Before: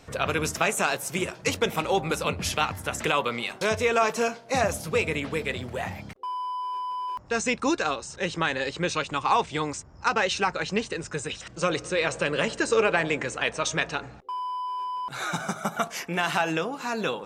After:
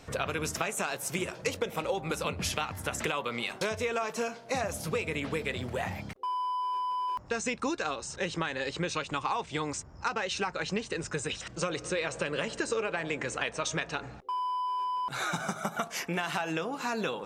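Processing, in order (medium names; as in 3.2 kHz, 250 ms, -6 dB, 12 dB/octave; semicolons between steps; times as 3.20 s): 1.34–1.94 s: peaking EQ 520 Hz +7.5 dB 0.35 oct; compression 6:1, threshold -28 dBFS, peak gain reduction 12.5 dB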